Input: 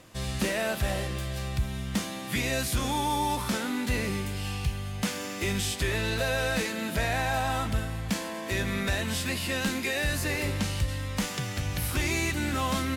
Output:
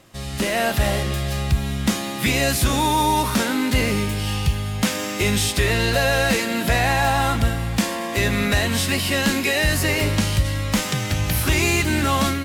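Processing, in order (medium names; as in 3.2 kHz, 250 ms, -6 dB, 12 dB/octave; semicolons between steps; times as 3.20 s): level rider gain up to 8 dB; speed mistake 24 fps film run at 25 fps; trim +1 dB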